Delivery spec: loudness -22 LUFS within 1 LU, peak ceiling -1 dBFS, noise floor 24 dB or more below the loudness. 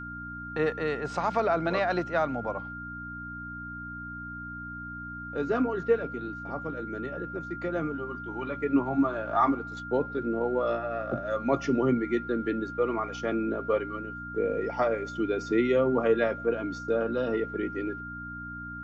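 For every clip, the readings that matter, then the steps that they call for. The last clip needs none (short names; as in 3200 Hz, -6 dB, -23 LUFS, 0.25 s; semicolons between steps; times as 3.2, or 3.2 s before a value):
hum 60 Hz; harmonics up to 300 Hz; hum level -41 dBFS; steady tone 1400 Hz; tone level -38 dBFS; loudness -30.0 LUFS; peak -12.0 dBFS; loudness target -22.0 LUFS
-> de-hum 60 Hz, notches 5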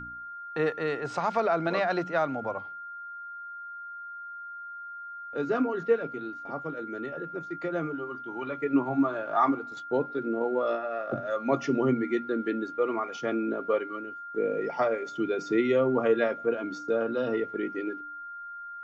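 hum none; steady tone 1400 Hz; tone level -38 dBFS
-> notch 1400 Hz, Q 30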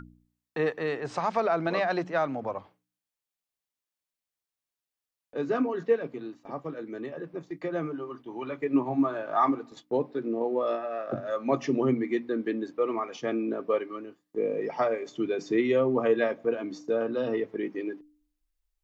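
steady tone none; loudness -29.5 LUFS; peak -12.5 dBFS; loudness target -22.0 LUFS
-> gain +7.5 dB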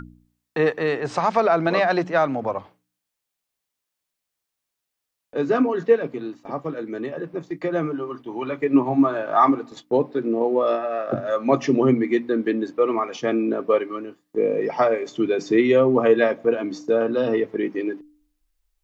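loudness -22.0 LUFS; peak -5.0 dBFS; noise floor -83 dBFS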